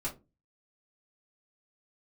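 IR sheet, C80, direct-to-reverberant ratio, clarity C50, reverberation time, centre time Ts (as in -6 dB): 21.0 dB, -7.0 dB, 13.5 dB, 0.25 s, 15 ms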